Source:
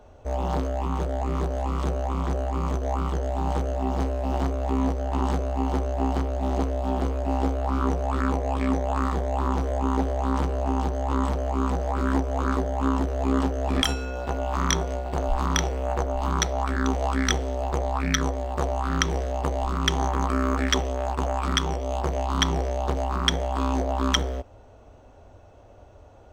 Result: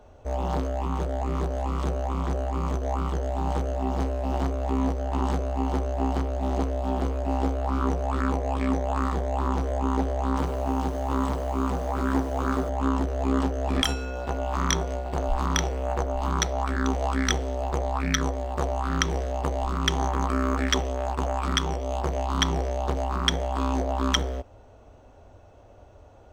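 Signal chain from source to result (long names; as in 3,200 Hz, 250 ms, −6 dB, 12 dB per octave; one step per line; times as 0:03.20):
0:10.27–0:12.69: feedback echo at a low word length 98 ms, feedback 35%, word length 7 bits, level −10.5 dB
level −1 dB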